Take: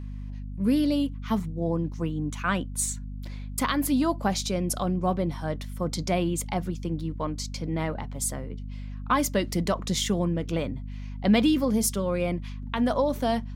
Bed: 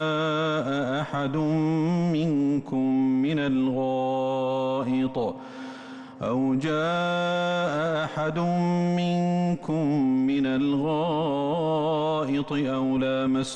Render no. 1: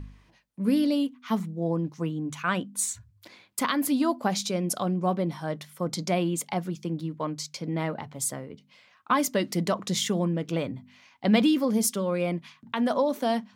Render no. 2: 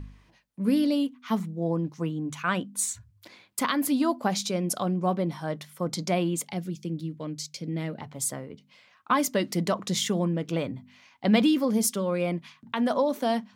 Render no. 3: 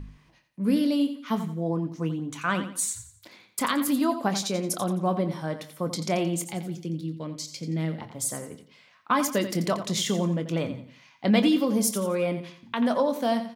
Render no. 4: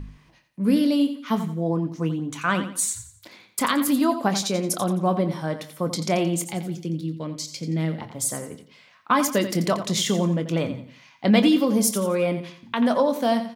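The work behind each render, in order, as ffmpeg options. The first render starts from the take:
-af "bandreject=f=50:t=h:w=4,bandreject=f=100:t=h:w=4,bandreject=f=150:t=h:w=4,bandreject=f=200:t=h:w=4,bandreject=f=250:t=h:w=4"
-filter_complex "[0:a]asettb=1/sr,asplit=3[s0][s1][s2];[s0]atrim=end=6.514[s3];[s1]atrim=start=6.51:end=8.01,asetpts=PTS-STARTPTS,afade=t=in:d=0.004:c=qsin,afade=t=out:st=1.496:d=0.004:c=qsin,equalizer=f=1000:w=0.99:g=-13.5[s4];[s2]atrim=start=8.006[s5];[s3][s4]acrossfade=d=0.004:c1=hsin:c2=qsin[s6];[s6][s5]acrossfade=d=0.004:c1=qsin:c2=hsin"
-filter_complex "[0:a]asplit=2[s0][s1];[s1]adelay=25,volume=0.251[s2];[s0][s2]amix=inputs=2:normalize=0,asplit=2[s3][s4];[s4]aecho=0:1:87|174|261|348:0.282|0.0958|0.0326|0.0111[s5];[s3][s5]amix=inputs=2:normalize=0"
-af "volume=1.5"

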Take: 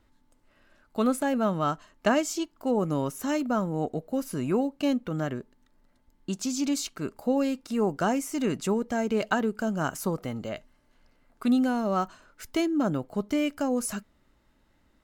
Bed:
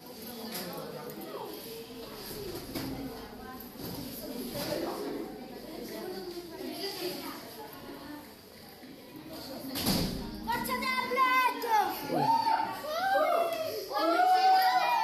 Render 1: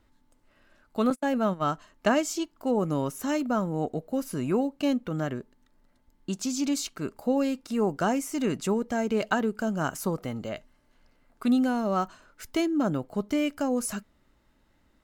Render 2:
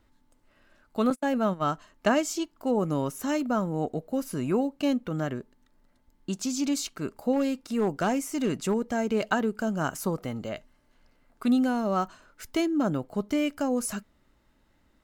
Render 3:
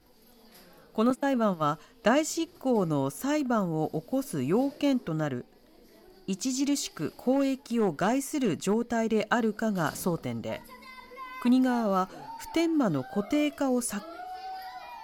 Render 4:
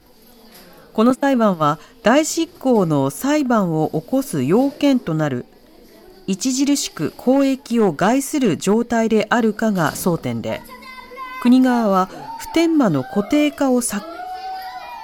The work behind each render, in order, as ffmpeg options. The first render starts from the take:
-filter_complex "[0:a]asettb=1/sr,asplit=3[s0][s1][s2];[s0]atrim=end=1.104[s3];[s1]atrim=start=1.1:end=1.64,asetpts=PTS-STARTPTS,afade=t=in:d=0.004:c=qsin,afade=t=out:st=0.536:d=0.004:c=qsin,agate=range=0.0158:threshold=0.0355:ratio=16:release=100:detection=peak[s4];[s2]atrim=start=1.636[s5];[s3][s4]acrossfade=d=0.004:c1=hsin:c2=qsin[s6];[s6][s5]acrossfade=d=0.004:c1=qsin:c2=hsin"
-filter_complex "[0:a]asettb=1/sr,asplit=3[s0][s1][s2];[s0]atrim=end=7.334[s3];[s1]atrim=start=7.33:end=8.93,asetpts=PTS-STARTPTS,afade=t=in:d=0.004:c=qsin,afade=t=out:st=1.596:d=0.004:c=qsin,asoftclip=type=hard:threshold=0.112[s4];[s2]atrim=start=8.926[s5];[s3][s4]acrossfade=d=0.004:c1=hsin:c2=qsin[s6];[s6][s5]acrossfade=d=0.004:c1=qsin:c2=hsin"
-filter_complex "[1:a]volume=0.158[s0];[0:a][s0]amix=inputs=2:normalize=0"
-af "volume=3.35,alimiter=limit=0.708:level=0:latency=1"

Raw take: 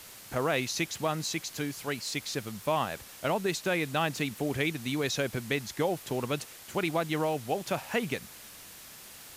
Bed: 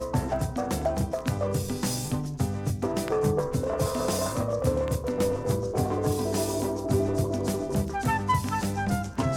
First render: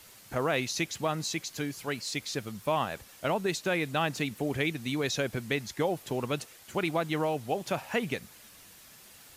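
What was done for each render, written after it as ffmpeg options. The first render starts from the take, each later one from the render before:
-af "afftdn=nr=6:nf=-49"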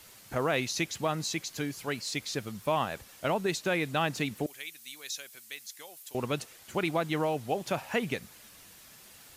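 -filter_complex "[0:a]asettb=1/sr,asplit=3[s0][s1][s2];[s0]atrim=end=4.464[s3];[s1]atrim=start=4.46:end=6.15,asetpts=PTS-STARTPTS,afade=t=in:d=0.004:c=qsin,afade=t=out:st=1.686:d=0.004:c=qsin,aderivative[s4];[s2]atrim=start=6.146[s5];[s3][s4]acrossfade=d=0.004:c1=hsin:c2=qsin[s6];[s6][s5]acrossfade=d=0.004:c1=qsin:c2=hsin"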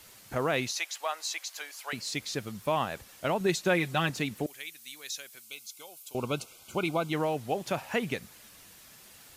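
-filter_complex "[0:a]asettb=1/sr,asplit=3[s0][s1][s2];[s0]atrim=end=0.714[s3];[s1]atrim=start=0.71:end=1.93,asetpts=PTS-STARTPTS,afade=t=in:d=0.004:c=qsin,afade=t=out:st=1.216:d=0.004:c=qsin,highpass=f=650:w=0.5412,highpass=f=650:w=1.3066[s4];[s2]atrim=start=1.926[s5];[s3][s4]acrossfade=d=0.004:c1=hsin:c2=qsin[s6];[s6][s5]acrossfade=d=0.004:c1=qsin:c2=hsin,asettb=1/sr,asplit=3[s7][s8][s9];[s7]atrim=end=3.404[s10];[s8]atrim=start=3.4:end=4.1,asetpts=PTS-STARTPTS,afade=t=in:d=0.004:c=qsin,afade=t=out:st=0.696:d=0.004:c=qsin,aecho=1:1:5.5:0.65,atrim=end_sample=30870[s11];[s9]atrim=start=4.096[s12];[s10][s11]acrossfade=d=0.004:c1=hsin:c2=qsin[s13];[s13][s12]acrossfade=d=0.004:c1=qsin:c2=hsin,asettb=1/sr,asplit=3[s14][s15][s16];[s14]atrim=end=5.424[s17];[s15]atrim=start=5.42:end=7.13,asetpts=PTS-STARTPTS,afade=t=in:d=0.004:c=qsin,afade=t=out:st=1.706:d=0.004:c=qsin,asuperstop=centerf=1800:order=20:qfactor=3.5[s18];[s16]atrim=start=7.126[s19];[s17][s18]acrossfade=d=0.004:c1=hsin:c2=qsin[s20];[s20][s19]acrossfade=d=0.004:c1=qsin:c2=hsin"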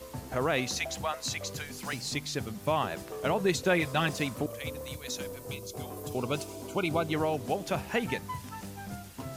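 -filter_complex "[1:a]volume=0.2[s0];[0:a][s0]amix=inputs=2:normalize=0"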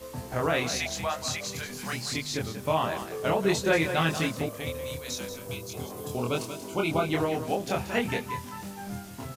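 -filter_complex "[0:a]asplit=2[s0][s1];[s1]adelay=25,volume=0.794[s2];[s0][s2]amix=inputs=2:normalize=0,aecho=1:1:184:0.316"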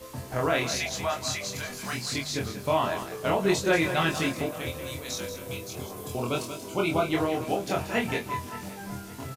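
-filter_complex "[0:a]asplit=2[s0][s1];[s1]adelay=22,volume=0.447[s2];[s0][s2]amix=inputs=2:normalize=0,asplit=2[s3][s4];[s4]adelay=571,lowpass=f=3400:p=1,volume=0.141,asplit=2[s5][s6];[s6]adelay=571,lowpass=f=3400:p=1,volume=0.49,asplit=2[s7][s8];[s8]adelay=571,lowpass=f=3400:p=1,volume=0.49,asplit=2[s9][s10];[s10]adelay=571,lowpass=f=3400:p=1,volume=0.49[s11];[s3][s5][s7][s9][s11]amix=inputs=5:normalize=0"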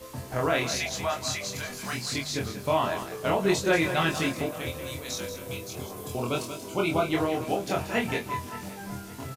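-af anull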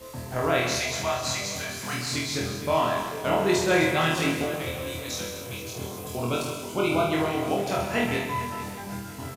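-af "aecho=1:1:50|130|258|462.8|790.5:0.631|0.398|0.251|0.158|0.1"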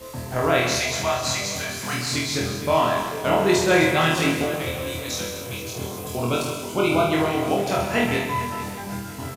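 -af "volume=1.58"

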